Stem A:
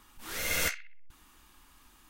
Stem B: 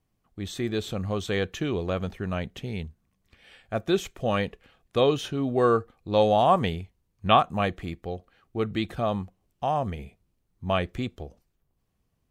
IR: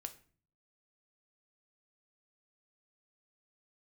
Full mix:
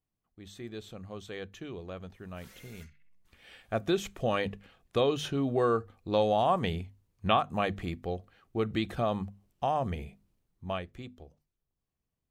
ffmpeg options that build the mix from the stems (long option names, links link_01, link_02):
-filter_complex "[0:a]acompressor=threshold=-38dB:ratio=12,asplit=2[link_01][link_02];[link_02]adelay=4.5,afreqshift=-1.3[link_03];[link_01][link_03]amix=inputs=2:normalize=1,adelay=2150,volume=-11.5dB[link_04];[1:a]bandreject=frequency=50:width_type=h:width=6,bandreject=frequency=100:width_type=h:width=6,bandreject=frequency=150:width_type=h:width=6,bandreject=frequency=200:width_type=h:width=6,bandreject=frequency=250:width_type=h:width=6,volume=-0.5dB,afade=type=in:start_time=3.09:duration=0.39:silence=0.237137,afade=type=out:start_time=10.32:duration=0.5:silence=0.266073,asplit=2[link_05][link_06];[link_06]apad=whole_len=187355[link_07];[link_04][link_07]sidechaincompress=threshold=-26dB:ratio=8:attack=16:release=613[link_08];[link_08][link_05]amix=inputs=2:normalize=0,acompressor=threshold=-26dB:ratio=2"